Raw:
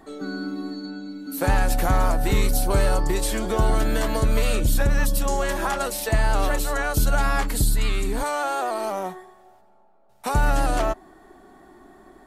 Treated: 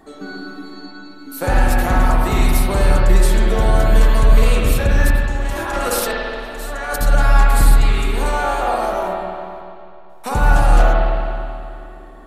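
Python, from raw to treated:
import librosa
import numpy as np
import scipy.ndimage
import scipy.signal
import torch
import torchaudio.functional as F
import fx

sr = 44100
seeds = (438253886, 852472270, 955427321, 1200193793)

y = fx.over_compress(x, sr, threshold_db=-27.0, ratio=-0.5, at=(5.1, 7.01))
y = fx.rev_spring(y, sr, rt60_s=2.5, pass_ms=(49, 53), chirp_ms=45, drr_db=-3.5)
y = F.gain(torch.from_numpy(y), 1.0).numpy()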